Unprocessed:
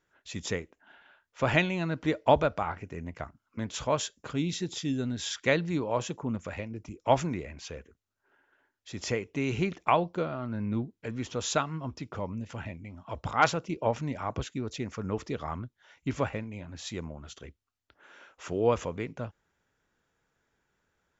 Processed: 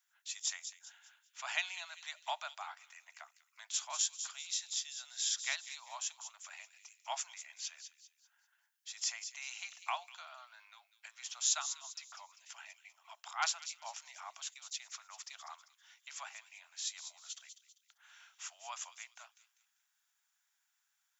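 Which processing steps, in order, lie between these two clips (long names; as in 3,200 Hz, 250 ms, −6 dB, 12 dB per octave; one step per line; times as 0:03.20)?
dynamic equaliser 2,200 Hz, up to −4 dB, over −44 dBFS, Q 0.82
Butterworth high-pass 680 Hz 72 dB per octave
first difference
delay with a high-pass on its return 197 ms, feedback 34%, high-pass 3,100 Hz, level −8.5 dB
level +5.5 dB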